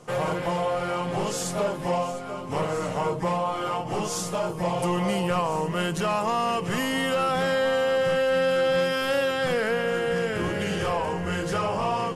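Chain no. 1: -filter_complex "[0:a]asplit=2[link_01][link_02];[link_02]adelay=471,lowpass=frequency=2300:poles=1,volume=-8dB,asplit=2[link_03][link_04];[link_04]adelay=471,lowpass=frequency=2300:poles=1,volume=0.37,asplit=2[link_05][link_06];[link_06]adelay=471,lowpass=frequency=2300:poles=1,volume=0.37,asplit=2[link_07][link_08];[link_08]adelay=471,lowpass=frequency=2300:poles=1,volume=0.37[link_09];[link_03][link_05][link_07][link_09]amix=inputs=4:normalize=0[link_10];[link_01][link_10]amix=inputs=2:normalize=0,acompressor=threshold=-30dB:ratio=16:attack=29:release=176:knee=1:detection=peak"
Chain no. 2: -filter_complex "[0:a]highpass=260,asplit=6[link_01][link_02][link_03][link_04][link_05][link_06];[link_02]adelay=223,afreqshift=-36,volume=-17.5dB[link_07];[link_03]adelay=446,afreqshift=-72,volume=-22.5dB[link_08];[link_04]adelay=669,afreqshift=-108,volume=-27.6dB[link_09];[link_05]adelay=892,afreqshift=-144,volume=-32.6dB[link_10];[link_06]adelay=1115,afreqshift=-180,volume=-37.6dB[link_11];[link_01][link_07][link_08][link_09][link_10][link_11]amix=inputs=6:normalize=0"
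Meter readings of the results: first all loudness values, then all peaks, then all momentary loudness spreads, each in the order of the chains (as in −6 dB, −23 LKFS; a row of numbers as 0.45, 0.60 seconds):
−32.0, −26.5 LKFS; −19.0, −13.0 dBFS; 1, 6 LU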